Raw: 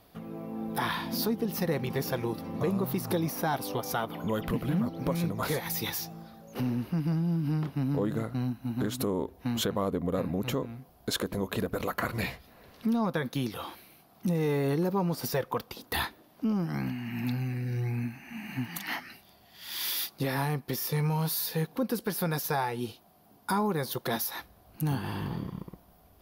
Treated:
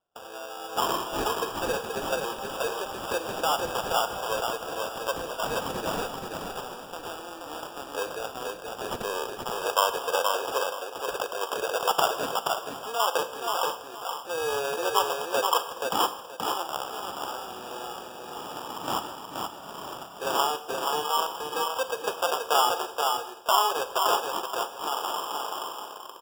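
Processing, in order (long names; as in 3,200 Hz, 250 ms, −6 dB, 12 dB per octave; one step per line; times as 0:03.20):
Bessel high-pass filter 860 Hz, order 8
noise gate −57 dBFS, range −29 dB
tilt shelving filter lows +7 dB, about 1,100 Hz
notch filter 2,100 Hz, Q 5.6
in parallel at −1 dB: downward compressor, threshold −45 dBFS, peak gain reduction 16 dB
on the sum: low-pass filter sweep 6,000 Hz → 1,300 Hz, 0:08.68–0:09.57
decimation without filtering 21×
repeating echo 477 ms, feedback 22%, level −4 dB
four-comb reverb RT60 0.81 s, combs from 33 ms, DRR 11.5 dB
level +5 dB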